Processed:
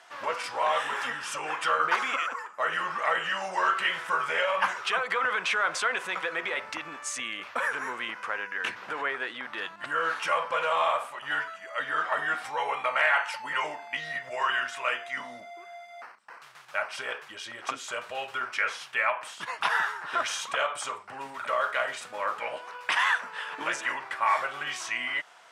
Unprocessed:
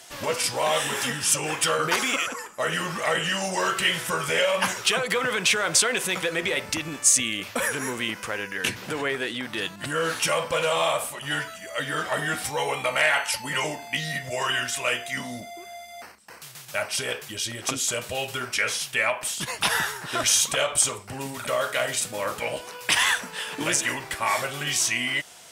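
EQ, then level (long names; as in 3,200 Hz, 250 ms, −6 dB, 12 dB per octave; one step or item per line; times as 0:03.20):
resonant band-pass 1,200 Hz, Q 1.5
+2.5 dB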